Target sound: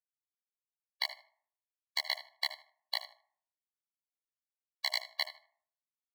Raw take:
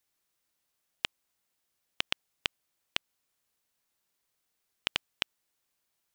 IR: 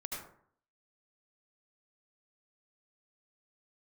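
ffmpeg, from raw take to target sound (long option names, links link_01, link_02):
-filter_complex "[0:a]highpass=frequency=150:poles=1,bandreject=frequency=1500:width=27,afwtdn=0.00398,highshelf=frequency=5400:gain=2.5,bandreject=frequency=50:width_type=h:width=6,bandreject=frequency=100:width_type=h:width=6,bandreject=frequency=150:width_type=h:width=6,bandreject=frequency=200:width_type=h:width=6,bandreject=frequency=250:width_type=h:width=6,bandreject=frequency=300:width_type=h:width=6,bandreject=frequency=350:width_type=h:width=6,bandreject=frequency=400:width_type=h:width=6,bandreject=frequency=450:width_type=h:width=6,flanger=delay=18:depth=6:speed=2.5,asetrate=62367,aresample=44100,atempo=0.707107,asplit=2[link_01][link_02];[link_02]highpass=frequency=720:poles=1,volume=25dB,asoftclip=type=tanh:threshold=-10dB[link_03];[link_01][link_03]amix=inputs=2:normalize=0,lowpass=frequency=2000:poles=1,volume=-6dB,acrusher=bits=7:mix=0:aa=0.000001,asplit=2[link_04][link_05];[link_05]adelay=77,lowpass=frequency=3200:poles=1,volume=-12dB,asplit=2[link_06][link_07];[link_07]adelay=77,lowpass=frequency=3200:poles=1,volume=0.25,asplit=2[link_08][link_09];[link_09]adelay=77,lowpass=frequency=3200:poles=1,volume=0.25[link_10];[link_04][link_06][link_08][link_10]amix=inputs=4:normalize=0,asplit=2[link_11][link_12];[1:a]atrim=start_sample=2205[link_13];[link_12][link_13]afir=irnorm=-1:irlink=0,volume=-18dB[link_14];[link_11][link_14]amix=inputs=2:normalize=0,afftfilt=real='re*eq(mod(floor(b*sr/1024/570),2),1)':imag='im*eq(mod(floor(b*sr/1024/570),2),1)':win_size=1024:overlap=0.75,volume=4dB"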